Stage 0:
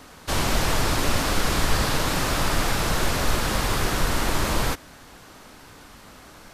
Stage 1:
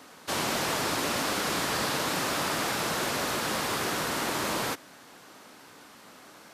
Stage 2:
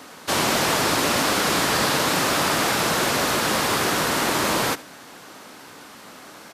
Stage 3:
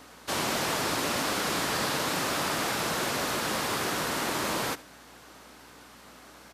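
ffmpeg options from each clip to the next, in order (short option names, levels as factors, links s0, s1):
-af "highpass=200,volume=0.668"
-af "aecho=1:1:74:0.1,volume=2.51"
-af "aeval=exprs='val(0)+0.00178*(sin(2*PI*60*n/s)+sin(2*PI*2*60*n/s)/2+sin(2*PI*3*60*n/s)/3+sin(2*PI*4*60*n/s)/4+sin(2*PI*5*60*n/s)/5)':c=same,volume=0.398"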